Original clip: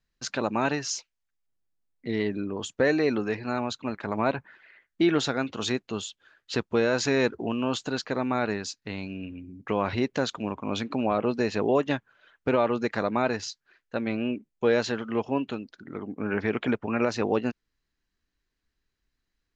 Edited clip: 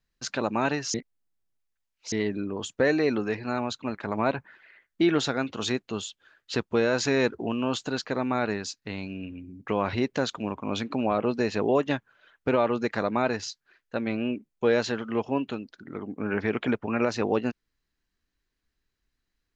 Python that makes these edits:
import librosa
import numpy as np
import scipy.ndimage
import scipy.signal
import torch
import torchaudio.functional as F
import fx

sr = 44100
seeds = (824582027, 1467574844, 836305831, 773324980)

y = fx.edit(x, sr, fx.reverse_span(start_s=0.94, length_s=1.18), tone=tone)